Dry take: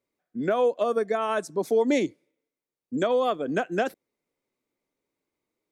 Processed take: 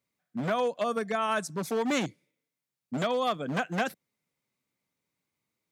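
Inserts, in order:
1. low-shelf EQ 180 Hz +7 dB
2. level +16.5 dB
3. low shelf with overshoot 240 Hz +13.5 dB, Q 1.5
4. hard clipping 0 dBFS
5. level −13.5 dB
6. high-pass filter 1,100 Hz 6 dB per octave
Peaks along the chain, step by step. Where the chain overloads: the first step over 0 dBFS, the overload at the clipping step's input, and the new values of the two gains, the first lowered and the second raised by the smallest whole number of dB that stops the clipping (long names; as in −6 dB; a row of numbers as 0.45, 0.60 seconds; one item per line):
−11.5, +5.0, +8.5, 0.0, −13.5, −13.5 dBFS
step 2, 8.5 dB
step 2 +7.5 dB, step 5 −4.5 dB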